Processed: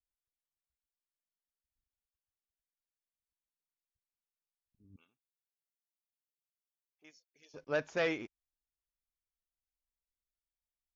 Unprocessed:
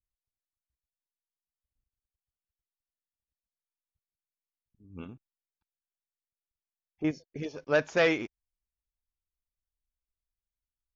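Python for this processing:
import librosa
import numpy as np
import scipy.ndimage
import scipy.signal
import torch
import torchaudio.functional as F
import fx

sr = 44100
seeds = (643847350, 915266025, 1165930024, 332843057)

y = fx.differentiator(x, sr, at=(4.96, 7.54))
y = y * 10.0 ** (-8.0 / 20.0)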